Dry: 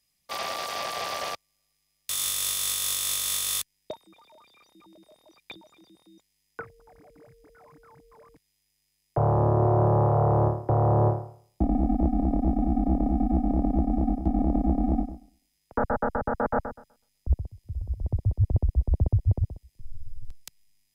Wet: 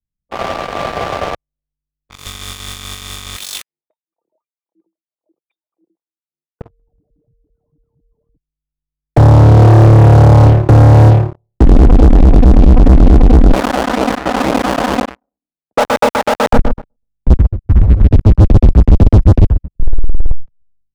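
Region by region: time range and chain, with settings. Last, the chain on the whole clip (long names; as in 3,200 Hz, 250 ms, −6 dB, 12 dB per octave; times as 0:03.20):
0:03.36–0:06.61: comb filter 6 ms, depth 30% + auto-filter high-pass sine 1.9 Hz 340–4,800 Hz
0:13.53–0:16.53: each half-wave held at its own peak + high-pass filter 610 Hz + phase shifter 2 Hz, delay 1.6 ms, feedback 33%
whole clip: low-pass that shuts in the quiet parts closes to 350 Hz, open at −22.5 dBFS; spectral tilt −4 dB per octave; leveller curve on the samples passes 5; level −4.5 dB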